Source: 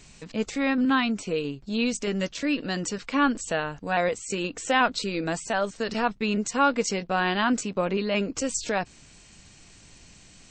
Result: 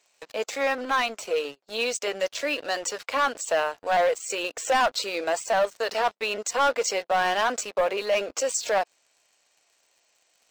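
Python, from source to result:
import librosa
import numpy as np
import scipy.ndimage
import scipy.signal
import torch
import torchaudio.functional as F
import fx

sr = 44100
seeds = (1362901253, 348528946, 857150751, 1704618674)

y = fx.ladder_highpass(x, sr, hz=480.0, resonance_pct=40)
y = fx.leveller(y, sr, passes=3)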